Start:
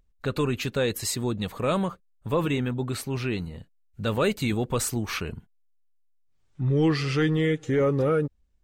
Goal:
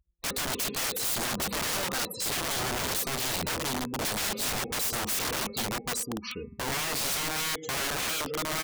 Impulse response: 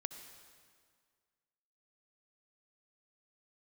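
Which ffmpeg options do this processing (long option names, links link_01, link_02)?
-filter_complex "[0:a]aecho=1:1:1146:0.2,asplit=2[link_01][link_02];[1:a]atrim=start_sample=2205,asetrate=66150,aresample=44100,adelay=15[link_03];[link_02][link_03]afir=irnorm=-1:irlink=0,volume=-4.5dB[link_04];[link_01][link_04]amix=inputs=2:normalize=0,acontrast=54,aecho=1:1:4:0.61,afftfilt=real='re*gte(hypot(re,im),0.0158)':imag='im*gte(hypot(re,im),0.0158)':win_size=1024:overlap=0.75,equalizer=frequency=400:width_type=o:width=0.67:gain=7,equalizer=frequency=1600:width_type=o:width=0.67:gain=-10,equalizer=frequency=4000:width_type=o:width=0.67:gain=6,acompressor=threshold=-24dB:ratio=6,highpass=69,bandreject=frequency=200.8:width_type=h:width=4,bandreject=frequency=401.6:width_type=h:width=4,bandreject=frequency=602.4:width_type=h:width=4,bandreject=frequency=803.2:width_type=h:width=4,bandreject=frequency=1004:width_type=h:width=4,bandreject=frequency=1204.8:width_type=h:width=4,bandreject=frequency=1405.6:width_type=h:width=4,bandreject=frequency=1606.4:width_type=h:width=4,bandreject=frequency=1807.2:width_type=h:width=4,bandreject=frequency=2008:width_type=h:width=4,bandreject=frequency=2208.8:width_type=h:width=4,bandreject=frequency=2409.6:width_type=h:width=4,bandreject=frequency=2610.4:width_type=h:width=4,aeval=exprs='(mod(22.4*val(0)+1,2)-1)/22.4':channel_layout=same,adynamicequalizer=threshold=0.00501:dfrequency=4100:dqfactor=0.7:tfrequency=4100:tqfactor=0.7:attack=5:release=100:ratio=0.375:range=2:mode=boostabove:tftype=highshelf"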